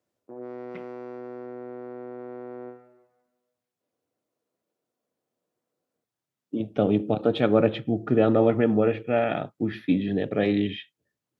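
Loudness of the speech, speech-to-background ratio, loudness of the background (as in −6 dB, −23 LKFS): −24.0 LKFS, 15.5 dB, −39.5 LKFS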